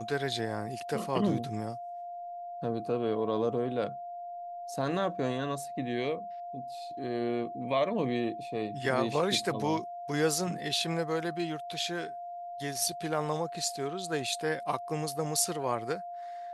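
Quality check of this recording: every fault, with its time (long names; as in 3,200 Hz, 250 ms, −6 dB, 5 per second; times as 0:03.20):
whistle 700 Hz −38 dBFS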